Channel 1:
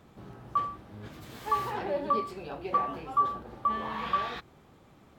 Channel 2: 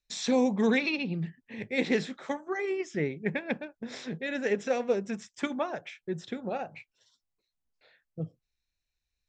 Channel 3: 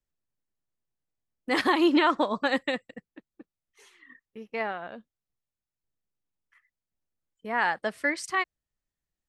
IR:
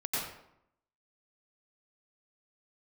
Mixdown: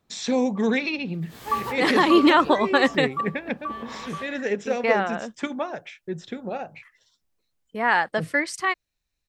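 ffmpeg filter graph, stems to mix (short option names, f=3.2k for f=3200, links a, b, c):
-filter_complex "[0:a]highshelf=f=4.5k:g=6,dynaudnorm=f=120:g=17:m=11dB,volume=-5dB,afade=t=in:st=1.17:d=0.55:silence=0.316228,afade=t=out:st=2.56:d=0.43:silence=0.398107[a];[1:a]volume=2.5dB,asplit=2[b][c];[2:a]dynaudnorm=f=270:g=17:m=6.5dB,adelay=300,volume=2.5dB[d];[c]apad=whole_len=228476[e];[a][e]sidechaincompress=threshold=-36dB:ratio=8:attack=23:release=113[f];[f][b][d]amix=inputs=3:normalize=0"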